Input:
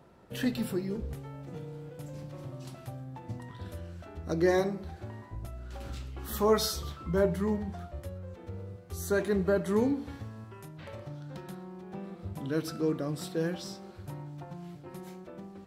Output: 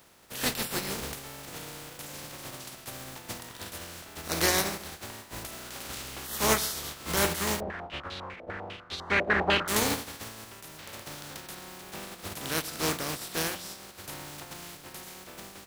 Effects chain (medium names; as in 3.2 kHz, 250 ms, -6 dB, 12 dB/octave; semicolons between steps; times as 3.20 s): spectral contrast reduction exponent 0.33; hum notches 60/120/180 Hz; 7.60–9.68 s: step-sequenced low-pass 10 Hz 610–3800 Hz